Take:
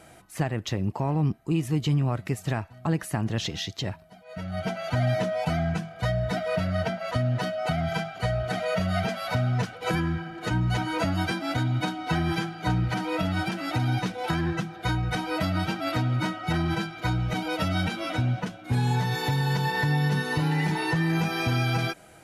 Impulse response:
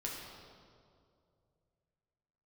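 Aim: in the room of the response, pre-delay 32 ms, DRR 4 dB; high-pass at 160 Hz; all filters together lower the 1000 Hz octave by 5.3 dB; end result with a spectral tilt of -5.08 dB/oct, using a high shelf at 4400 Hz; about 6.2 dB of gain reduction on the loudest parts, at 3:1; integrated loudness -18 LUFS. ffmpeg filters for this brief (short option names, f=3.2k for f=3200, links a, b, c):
-filter_complex "[0:a]highpass=160,equalizer=f=1k:t=o:g=-8,highshelf=f=4.4k:g=6.5,acompressor=threshold=-32dB:ratio=3,asplit=2[a][b];[1:a]atrim=start_sample=2205,adelay=32[c];[b][c]afir=irnorm=-1:irlink=0,volume=-5dB[d];[a][d]amix=inputs=2:normalize=0,volume=14.5dB"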